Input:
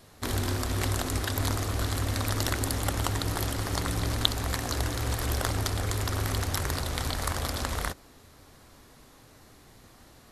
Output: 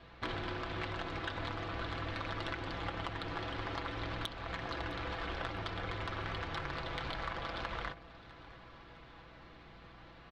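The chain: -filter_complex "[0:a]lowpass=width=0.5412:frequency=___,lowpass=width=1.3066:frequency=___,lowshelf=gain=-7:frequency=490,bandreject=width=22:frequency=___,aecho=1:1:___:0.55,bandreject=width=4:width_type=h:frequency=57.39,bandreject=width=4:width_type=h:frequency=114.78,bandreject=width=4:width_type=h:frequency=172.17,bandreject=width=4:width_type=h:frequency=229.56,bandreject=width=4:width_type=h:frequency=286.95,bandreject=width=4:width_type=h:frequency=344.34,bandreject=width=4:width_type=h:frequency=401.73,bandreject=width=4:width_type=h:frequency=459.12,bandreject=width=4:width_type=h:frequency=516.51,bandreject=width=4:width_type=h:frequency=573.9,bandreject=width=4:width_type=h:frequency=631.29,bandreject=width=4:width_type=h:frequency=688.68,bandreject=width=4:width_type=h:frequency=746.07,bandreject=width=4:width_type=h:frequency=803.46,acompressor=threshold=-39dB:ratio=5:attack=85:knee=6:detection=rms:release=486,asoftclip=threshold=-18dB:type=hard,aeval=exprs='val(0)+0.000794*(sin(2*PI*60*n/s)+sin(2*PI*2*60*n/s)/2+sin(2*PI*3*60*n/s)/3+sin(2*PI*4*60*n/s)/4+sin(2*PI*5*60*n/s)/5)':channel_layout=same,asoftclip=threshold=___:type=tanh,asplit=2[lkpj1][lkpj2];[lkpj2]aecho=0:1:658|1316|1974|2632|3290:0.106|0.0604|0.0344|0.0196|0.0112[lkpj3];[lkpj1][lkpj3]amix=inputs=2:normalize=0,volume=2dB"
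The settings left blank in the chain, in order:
3300, 3300, 1900, 6, -27dB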